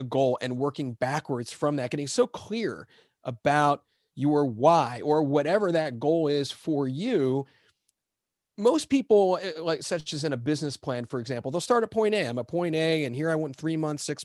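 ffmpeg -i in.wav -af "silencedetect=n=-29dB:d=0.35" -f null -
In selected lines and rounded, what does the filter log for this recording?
silence_start: 2.74
silence_end: 3.27 | silence_duration: 0.53
silence_start: 3.75
silence_end: 4.19 | silence_duration: 0.44
silence_start: 7.41
silence_end: 8.59 | silence_duration: 1.18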